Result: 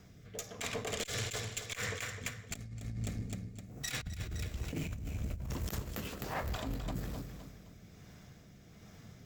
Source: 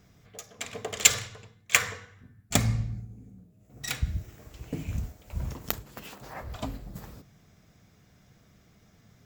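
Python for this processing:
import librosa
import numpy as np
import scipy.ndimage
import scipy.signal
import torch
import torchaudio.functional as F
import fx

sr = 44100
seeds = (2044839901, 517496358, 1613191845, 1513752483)

p1 = fx.rotary(x, sr, hz=1.2)
p2 = p1 + fx.echo_feedback(p1, sr, ms=258, feedback_pct=41, wet_db=-9.5, dry=0)
p3 = fx.over_compress(p2, sr, threshold_db=-39.0, ratio=-1.0)
p4 = fx.tube_stage(p3, sr, drive_db=30.0, bias=0.45)
y = F.gain(torch.from_numpy(p4), 2.5).numpy()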